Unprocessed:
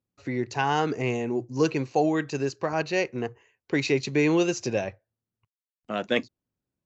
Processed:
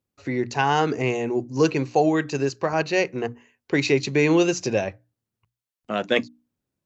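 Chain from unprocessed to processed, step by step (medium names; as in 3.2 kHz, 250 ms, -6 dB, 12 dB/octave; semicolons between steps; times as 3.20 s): hum notches 60/120/180/240/300 Hz; trim +4 dB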